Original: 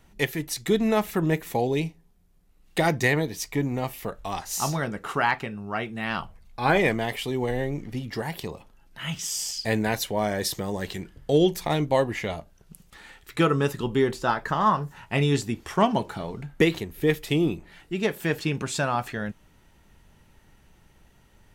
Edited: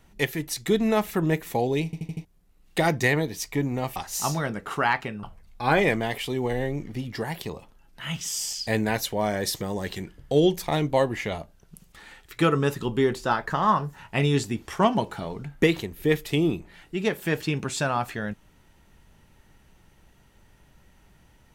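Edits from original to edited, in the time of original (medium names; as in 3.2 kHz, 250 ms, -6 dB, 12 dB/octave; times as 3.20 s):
1.85 s: stutter in place 0.08 s, 5 plays
3.96–4.34 s: delete
5.61–6.21 s: delete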